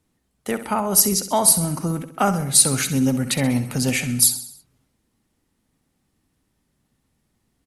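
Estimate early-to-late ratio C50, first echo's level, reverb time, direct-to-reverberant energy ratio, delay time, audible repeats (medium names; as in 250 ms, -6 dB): no reverb, -12.0 dB, no reverb, no reverb, 65 ms, 5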